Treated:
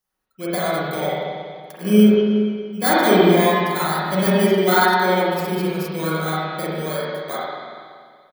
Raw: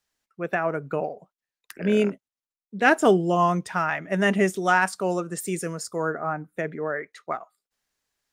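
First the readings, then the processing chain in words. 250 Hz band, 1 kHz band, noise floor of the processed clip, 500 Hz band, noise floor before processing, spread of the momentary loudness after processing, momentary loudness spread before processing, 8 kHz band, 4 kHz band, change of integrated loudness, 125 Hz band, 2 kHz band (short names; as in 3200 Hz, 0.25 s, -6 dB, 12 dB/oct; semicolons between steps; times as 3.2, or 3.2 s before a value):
+8.5 dB, +5.0 dB, -56 dBFS, +6.0 dB, under -85 dBFS, 15 LU, 13 LU, +4.0 dB, +12.0 dB, +6.0 dB, +7.5 dB, +2.5 dB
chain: FFT order left unsorted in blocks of 16 samples; comb 5.4 ms, depth 43%; spring tank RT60 2 s, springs 38/47 ms, chirp 55 ms, DRR -8.5 dB; gain -3.5 dB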